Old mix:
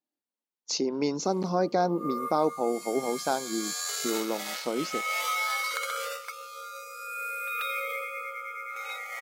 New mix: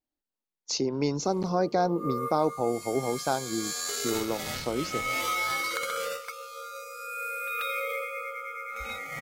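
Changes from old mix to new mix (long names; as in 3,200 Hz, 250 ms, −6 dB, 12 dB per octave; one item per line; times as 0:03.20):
background: remove high-pass filter 560 Hz 24 dB per octave
master: remove linear-phase brick-wall high-pass 150 Hz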